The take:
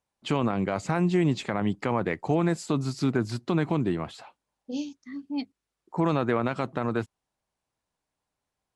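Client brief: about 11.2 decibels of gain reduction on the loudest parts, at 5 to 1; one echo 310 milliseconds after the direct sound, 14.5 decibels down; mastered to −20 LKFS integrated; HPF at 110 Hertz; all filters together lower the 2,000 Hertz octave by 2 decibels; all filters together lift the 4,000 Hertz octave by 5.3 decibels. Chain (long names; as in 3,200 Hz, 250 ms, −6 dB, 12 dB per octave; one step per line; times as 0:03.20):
high-pass filter 110 Hz
parametric band 2,000 Hz −4.5 dB
parametric band 4,000 Hz +8 dB
downward compressor 5 to 1, threshold −33 dBFS
single-tap delay 310 ms −14.5 dB
level +17.5 dB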